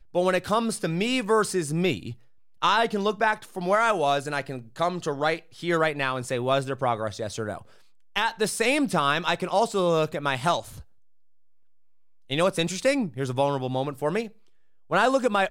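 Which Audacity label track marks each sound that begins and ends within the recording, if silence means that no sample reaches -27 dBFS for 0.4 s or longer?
2.620000	7.550000	sound
8.160000	10.600000	sound
12.310000	14.230000	sound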